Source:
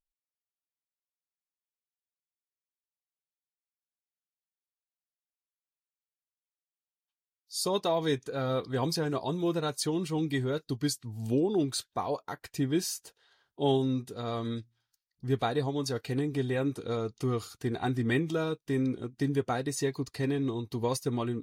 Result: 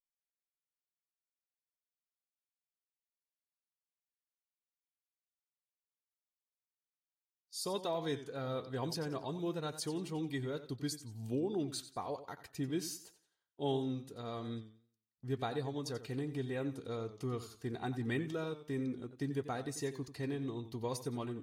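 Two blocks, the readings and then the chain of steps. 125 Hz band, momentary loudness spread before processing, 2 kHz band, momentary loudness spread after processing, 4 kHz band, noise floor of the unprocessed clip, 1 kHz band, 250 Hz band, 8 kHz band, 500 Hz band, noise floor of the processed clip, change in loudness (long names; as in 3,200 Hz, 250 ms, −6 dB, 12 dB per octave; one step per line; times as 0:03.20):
−8.5 dB, 6 LU, −8.0 dB, 6 LU, −8.5 dB, below −85 dBFS, −8.0 dB, −8.5 dB, −8.5 dB, −8.0 dB, below −85 dBFS, −8.5 dB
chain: noise gate −50 dBFS, range −12 dB
feedback echo with a swinging delay time 89 ms, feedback 31%, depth 88 cents, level −13 dB
level −8.5 dB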